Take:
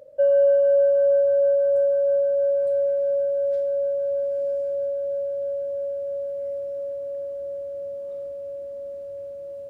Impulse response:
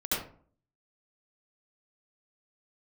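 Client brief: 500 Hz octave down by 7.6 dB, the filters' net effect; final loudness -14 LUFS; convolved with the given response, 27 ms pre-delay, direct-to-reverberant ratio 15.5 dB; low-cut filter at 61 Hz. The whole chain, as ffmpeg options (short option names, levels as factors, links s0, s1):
-filter_complex "[0:a]highpass=61,equalizer=f=500:t=o:g=-8.5,asplit=2[s0][s1];[1:a]atrim=start_sample=2205,adelay=27[s2];[s1][s2]afir=irnorm=-1:irlink=0,volume=0.0708[s3];[s0][s3]amix=inputs=2:normalize=0,volume=7.5"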